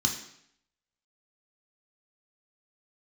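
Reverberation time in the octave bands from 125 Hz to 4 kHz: 0.70, 0.70, 0.70, 0.70, 0.70, 0.70 seconds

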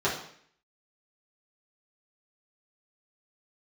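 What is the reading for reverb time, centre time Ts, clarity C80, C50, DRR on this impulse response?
0.60 s, 31 ms, 9.5 dB, 6.0 dB, −8.0 dB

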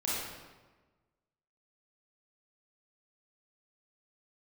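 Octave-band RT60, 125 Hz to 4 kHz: 1.5, 1.4, 1.3, 1.2, 1.1, 0.90 seconds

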